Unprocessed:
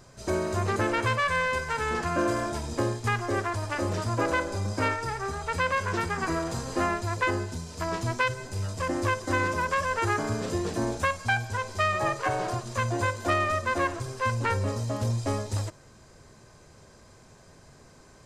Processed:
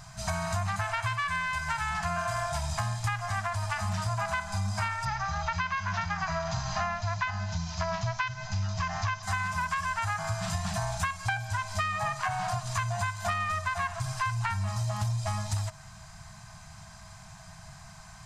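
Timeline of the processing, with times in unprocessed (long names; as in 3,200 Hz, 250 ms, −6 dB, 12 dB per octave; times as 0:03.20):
0:05.05–0:09.23: Butterworth low-pass 6,700 Hz 72 dB per octave
whole clip: brick-wall band-stop 210–630 Hz; downward compressor, threshold −34 dBFS; level +6.5 dB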